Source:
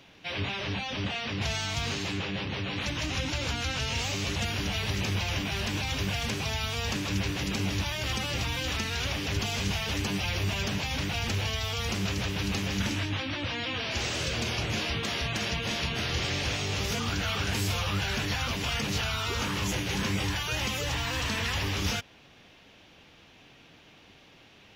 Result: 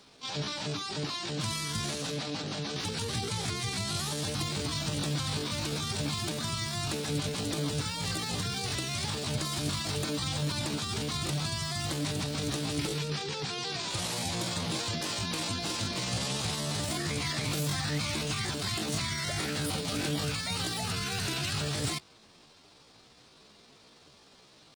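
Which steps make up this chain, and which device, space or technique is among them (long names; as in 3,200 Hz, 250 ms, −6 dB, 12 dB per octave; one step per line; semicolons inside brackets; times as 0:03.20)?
chipmunk voice (pitch shifter +7 semitones)
level −2 dB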